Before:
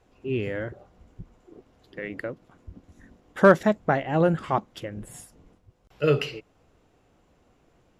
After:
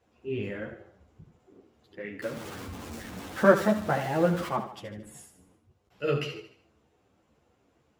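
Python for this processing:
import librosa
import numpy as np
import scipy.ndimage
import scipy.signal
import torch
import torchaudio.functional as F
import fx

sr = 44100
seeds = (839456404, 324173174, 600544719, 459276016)

y = fx.zero_step(x, sr, step_db=-30.0, at=(2.22, 4.48))
y = scipy.signal.sosfilt(scipy.signal.butter(2, 69.0, 'highpass', fs=sr, output='sos'), y)
y = fx.echo_feedback(y, sr, ms=75, feedback_pct=45, wet_db=-9.5)
y = fx.ensemble(y, sr)
y = y * 10.0 ** (-2.0 / 20.0)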